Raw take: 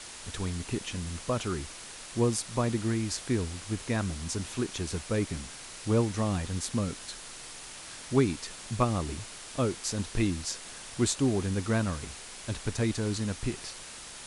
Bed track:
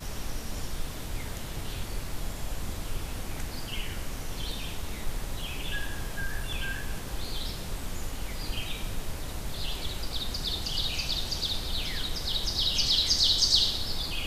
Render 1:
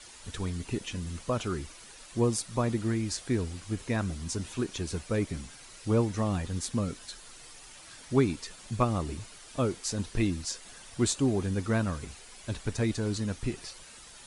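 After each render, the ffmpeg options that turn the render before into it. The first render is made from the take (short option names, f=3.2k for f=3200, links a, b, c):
-af "afftdn=nr=9:nf=-45"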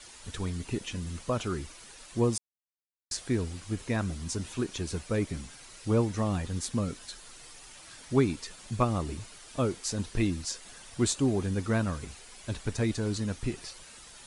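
-filter_complex "[0:a]asplit=3[a][b][c];[a]atrim=end=2.38,asetpts=PTS-STARTPTS,afade=t=out:st=2.376:d=0.004:c=hsin[d];[b]atrim=start=2.38:end=3.11,asetpts=PTS-STARTPTS,volume=0[e];[c]atrim=start=3.11,asetpts=PTS-STARTPTS,afade=t=in:d=0.004:c=hsin[f];[d][e][f]concat=n=3:v=0:a=1"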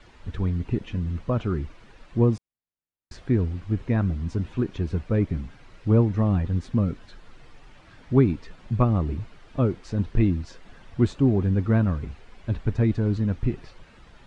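-af "lowpass=2.4k,lowshelf=f=310:g=10.5"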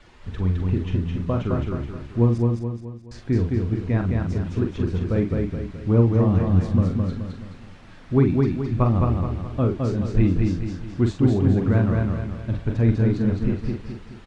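-filter_complex "[0:a]asplit=2[a][b];[b]adelay=43,volume=-6dB[c];[a][c]amix=inputs=2:normalize=0,aecho=1:1:213|426|639|852|1065|1278:0.708|0.304|0.131|0.0563|0.0242|0.0104"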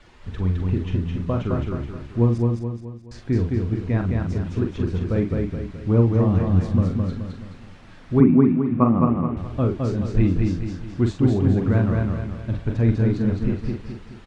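-filter_complex "[0:a]asettb=1/sr,asplit=3[a][b][c];[a]atrim=end=8.204[d];[b]atrim=start=8.2:end=9.37,asetpts=PTS-STARTPTS,afade=t=in:d=0.004:c=qsin,afade=t=out:st=1.166:d=0.004:c=qsin,highpass=160,equalizer=f=160:t=q:w=4:g=9,equalizer=f=250:t=q:w=4:g=10,equalizer=f=470:t=q:w=4:g=3,equalizer=f=1.1k:t=q:w=4:g=6,equalizer=f=1.7k:t=q:w=4:g=-4,lowpass=f=2.5k:w=0.5412,lowpass=f=2.5k:w=1.3066[e];[c]atrim=start=9.366[f];[d][e]acrossfade=d=0.004:c1=hsin:c2=qsin[g];[g][f]acrossfade=d=0.004:c1=qsin:c2=hsin"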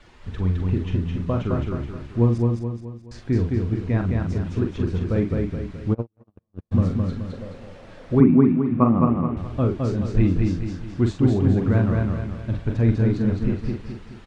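-filter_complex "[0:a]asplit=3[a][b][c];[a]afade=t=out:st=5.93:d=0.02[d];[b]agate=range=-58dB:threshold=-12dB:ratio=16:release=100:detection=peak,afade=t=in:st=5.93:d=0.02,afade=t=out:st=6.71:d=0.02[e];[c]afade=t=in:st=6.71:d=0.02[f];[d][e][f]amix=inputs=3:normalize=0,asettb=1/sr,asplit=3[g][h][i];[g]atrim=end=7.324[j];[h]atrim=start=7.32:end=8.15,asetpts=PTS-STARTPTS,afade=t=in:d=0.004:c=qsin,afade=t=out:st=0.826:d=0.004:c=qsin,equalizer=f=530:w=2.1:g=14.5[k];[i]atrim=start=8.146[l];[j][k]acrossfade=d=0.004:c1=hsin:c2=qsin[m];[m][l]acrossfade=d=0.004:c1=qsin:c2=hsin"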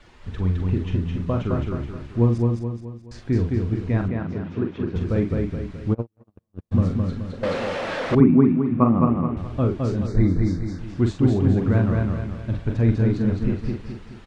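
-filter_complex "[0:a]asettb=1/sr,asplit=3[a][b][c];[a]atrim=end=4.084[d];[b]atrim=start=4.08:end=4.96,asetpts=PTS-STARTPTS,afade=t=in:d=0.004:c=qsin,afade=t=out:st=0.876:d=0.004:c=qsin,highpass=140,lowpass=2.9k[e];[c]atrim=start=4.956[f];[d][e]acrossfade=d=0.004:c1=hsin:c2=qsin[g];[g][f]acrossfade=d=0.004:c1=qsin:c2=hsin,asettb=1/sr,asplit=3[h][i][j];[h]atrim=end=7.434[k];[i]atrim=start=7.43:end=8.15,asetpts=PTS-STARTPTS,afade=t=in:d=0.004:c=qsin,afade=t=out:st=0.716:d=0.004:c=qsin,asplit=2[l][m];[m]highpass=f=720:p=1,volume=29dB,asoftclip=type=tanh:threshold=-12dB[n];[l][n]amix=inputs=2:normalize=0,lowpass=f=3.6k:p=1,volume=-6dB[o];[j]atrim=start=8.146[p];[k][o]acrossfade=d=0.004:c1=hsin:c2=qsin[q];[q][p]acrossfade=d=0.004:c1=qsin:c2=hsin,asettb=1/sr,asplit=3[r][s][t];[r]atrim=end=10.074[u];[s]atrim=start=10.07:end=10.79,asetpts=PTS-STARTPTS,afade=t=in:d=0.004:c=qsin,afade=t=out:st=0.716:d=0.004:c=qsin,asuperstop=centerf=2900:order=12:qfactor=2.2[v];[t]atrim=start=10.786[w];[u][v]acrossfade=d=0.004:c1=hsin:c2=qsin[x];[x][w]acrossfade=d=0.004:c1=qsin:c2=hsin"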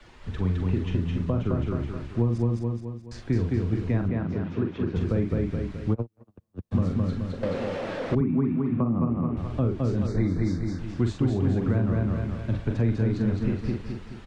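-filter_complex "[0:a]alimiter=limit=-7dB:level=0:latency=1:release=477,acrossover=split=86|180|550[a][b][c][d];[a]acompressor=threshold=-32dB:ratio=4[e];[b]acompressor=threshold=-27dB:ratio=4[f];[c]acompressor=threshold=-27dB:ratio=4[g];[d]acompressor=threshold=-38dB:ratio=4[h];[e][f][g][h]amix=inputs=4:normalize=0"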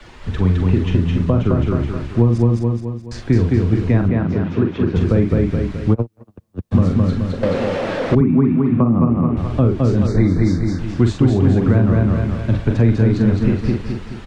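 -af "volume=10dB,alimiter=limit=-2dB:level=0:latency=1"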